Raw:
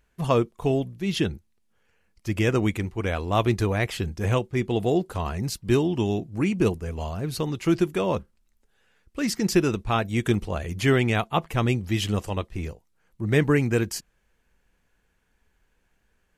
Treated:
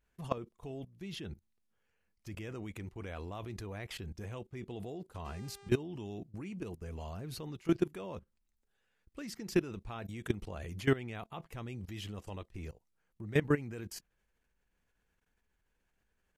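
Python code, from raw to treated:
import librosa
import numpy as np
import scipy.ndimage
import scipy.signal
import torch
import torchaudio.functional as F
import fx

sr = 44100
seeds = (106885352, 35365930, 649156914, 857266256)

y = fx.level_steps(x, sr, step_db=18)
y = fx.dmg_buzz(y, sr, base_hz=400.0, harmonics=23, level_db=-51.0, tilt_db=-5, odd_only=False, at=(5.24, 5.68), fade=0.02)
y = fx.dynamic_eq(y, sr, hz=7600.0, q=0.72, threshold_db=-50.0, ratio=4.0, max_db=-4)
y = y * 10.0 ** (-6.0 / 20.0)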